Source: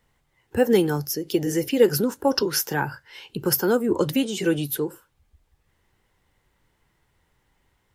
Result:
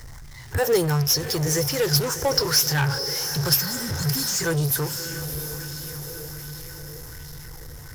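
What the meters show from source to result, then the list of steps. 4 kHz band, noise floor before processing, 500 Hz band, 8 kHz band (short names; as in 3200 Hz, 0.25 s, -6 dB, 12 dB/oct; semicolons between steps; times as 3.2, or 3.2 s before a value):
+7.5 dB, -70 dBFS, -3.5 dB, +8.0 dB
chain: spectral repair 3.6–4.38, 280–4200 Hz before; EQ curve 140 Hz 0 dB, 210 Hz -30 dB, 490 Hz -16 dB, 1900 Hz -8 dB, 2700 Hz -22 dB, 5400 Hz +2 dB, 7700 Hz -5 dB; on a send: diffused feedback echo 0.662 s, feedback 46%, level -16 dB; on the sum: power-law curve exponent 0.5; LFO bell 1.3 Hz 410–4200 Hz +6 dB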